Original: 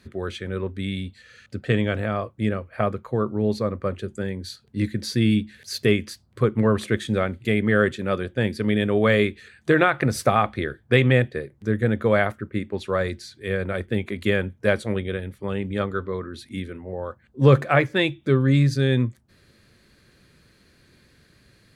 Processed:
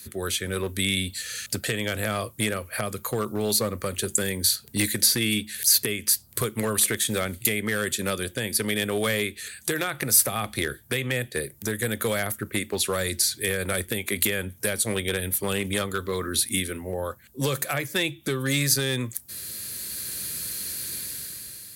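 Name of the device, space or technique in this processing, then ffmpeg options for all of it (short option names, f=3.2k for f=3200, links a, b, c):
FM broadcast chain: -filter_complex "[0:a]highpass=f=47:w=0.5412,highpass=f=47:w=1.3066,dynaudnorm=f=230:g=7:m=11.5dB,acrossover=split=390|2700[a][b][c];[a]acompressor=threshold=-27dB:ratio=4[d];[b]acompressor=threshold=-26dB:ratio=4[e];[c]acompressor=threshold=-41dB:ratio=4[f];[d][e][f]amix=inputs=3:normalize=0,aemphasis=mode=production:type=75fm,alimiter=limit=-15dB:level=0:latency=1:release=285,asoftclip=type=hard:threshold=-18.5dB,lowpass=f=15k:w=0.5412,lowpass=f=15k:w=1.3066,aemphasis=mode=production:type=75fm"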